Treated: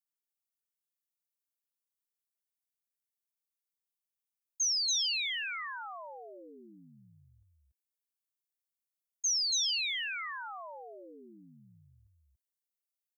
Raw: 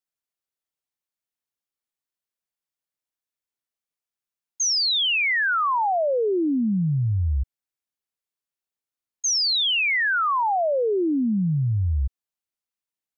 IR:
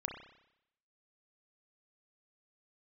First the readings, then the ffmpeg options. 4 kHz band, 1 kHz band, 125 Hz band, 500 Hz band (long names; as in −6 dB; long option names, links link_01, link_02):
−9.0 dB, −20.5 dB, below −35 dB, −26.5 dB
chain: -af "aderivative,aeval=exprs='0.106*(cos(1*acos(clip(val(0)/0.106,-1,1)))-cos(1*PI/2))+0.000944*(cos(6*acos(clip(val(0)/0.106,-1,1)))-cos(6*PI/2))+0.00075*(cos(8*acos(clip(val(0)/0.106,-1,1)))-cos(8*PI/2))':channel_layout=same,aecho=1:1:283:0.708,volume=-5.5dB"